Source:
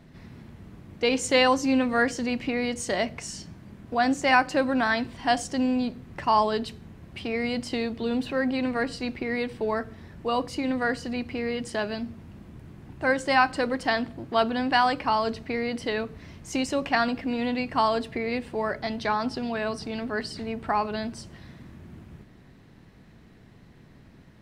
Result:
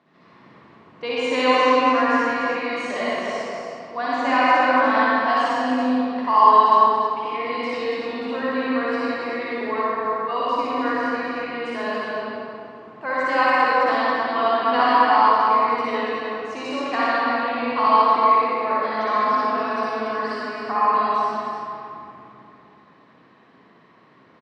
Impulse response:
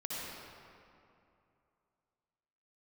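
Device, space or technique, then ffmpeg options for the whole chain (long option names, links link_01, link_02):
station announcement: -filter_complex "[0:a]highpass=340,lowpass=4000,equalizer=frequency=1100:width_type=o:width=0.32:gain=11,aecho=1:1:58.31|282.8:0.794|0.562[link_01];[1:a]atrim=start_sample=2205[link_02];[link_01][link_02]afir=irnorm=-1:irlink=0,volume=-1dB"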